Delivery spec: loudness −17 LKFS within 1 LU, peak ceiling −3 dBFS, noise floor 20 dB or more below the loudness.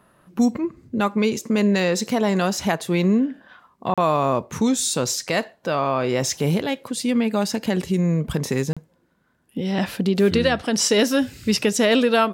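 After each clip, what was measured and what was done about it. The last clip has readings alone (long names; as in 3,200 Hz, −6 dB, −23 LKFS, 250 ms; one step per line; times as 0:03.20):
number of dropouts 2; longest dropout 36 ms; integrated loudness −21.5 LKFS; sample peak −7.5 dBFS; target loudness −17.0 LKFS
→ repair the gap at 0:03.94/0:08.73, 36 ms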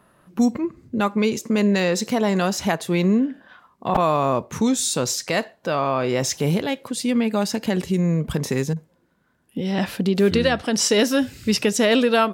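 number of dropouts 0; integrated loudness −21.5 LKFS; sample peak −4.5 dBFS; target loudness −17.0 LKFS
→ level +4.5 dB
brickwall limiter −3 dBFS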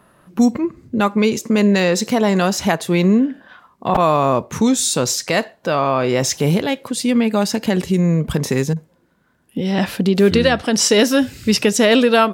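integrated loudness −17.0 LKFS; sample peak −3.0 dBFS; background noise floor −59 dBFS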